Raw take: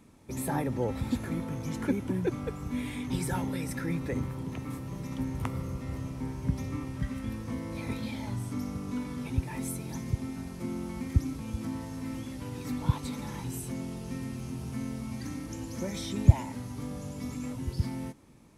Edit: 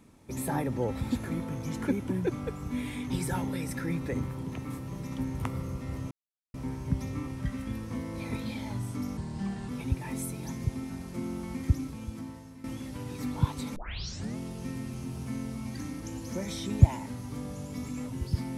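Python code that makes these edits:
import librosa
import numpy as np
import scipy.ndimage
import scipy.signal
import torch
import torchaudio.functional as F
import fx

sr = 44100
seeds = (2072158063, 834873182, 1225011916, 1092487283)

y = fx.edit(x, sr, fx.insert_silence(at_s=6.11, length_s=0.43),
    fx.speed_span(start_s=8.74, length_s=0.41, speed=0.79),
    fx.fade_out_to(start_s=11.16, length_s=0.94, floor_db=-13.5),
    fx.tape_start(start_s=13.22, length_s=0.61), tone=tone)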